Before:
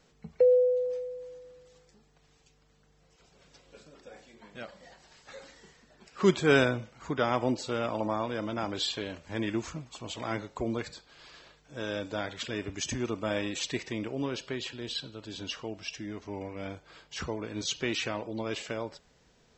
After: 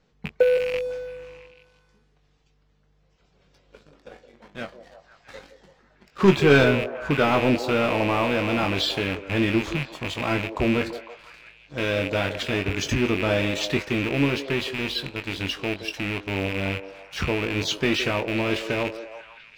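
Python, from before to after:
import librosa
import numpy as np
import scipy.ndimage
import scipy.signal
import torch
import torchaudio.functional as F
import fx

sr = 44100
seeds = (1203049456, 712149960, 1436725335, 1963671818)

y = fx.rattle_buzz(x, sr, strikes_db=-43.0, level_db=-25.0)
y = scipy.signal.sosfilt(scipy.signal.butter(2, 4700.0, 'lowpass', fs=sr, output='sos'), y)
y = fx.low_shelf(y, sr, hz=180.0, db=5.5)
y = fx.leveller(y, sr, passes=2)
y = fx.doubler(y, sr, ms=21.0, db=-8.0)
y = fx.echo_stepped(y, sr, ms=167, hz=450.0, octaves=0.7, feedback_pct=70, wet_db=-8)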